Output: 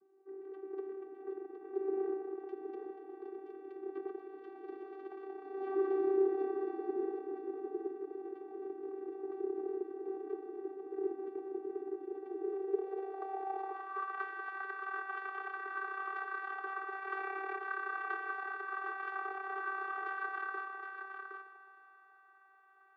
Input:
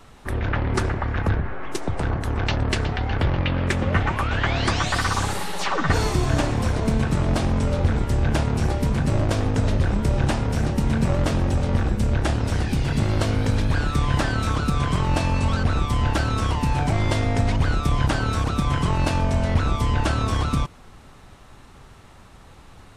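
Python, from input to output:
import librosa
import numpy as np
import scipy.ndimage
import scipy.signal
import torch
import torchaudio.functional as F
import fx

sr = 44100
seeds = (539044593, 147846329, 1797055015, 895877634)

p1 = scipy.signal.sosfilt(scipy.signal.butter(2, 2600.0, 'lowpass', fs=sr, output='sos'), x)
p2 = fx.rev_schroeder(p1, sr, rt60_s=3.2, comb_ms=32, drr_db=1.5)
p3 = fx.cheby_harmonics(p2, sr, harmonics=(7,), levels_db=(-11,), full_scale_db=-3.0)
p4 = fx.vocoder(p3, sr, bands=16, carrier='saw', carrier_hz=387.0)
p5 = p4 + fx.echo_single(p4, sr, ms=766, db=-6.5, dry=0)
p6 = fx.filter_sweep_bandpass(p5, sr, from_hz=260.0, to_hz=1400.0, start_s=12.07, end_s=14.24, q=3.4)
y = p6 * librosa.db_to_amplitude(-4.5)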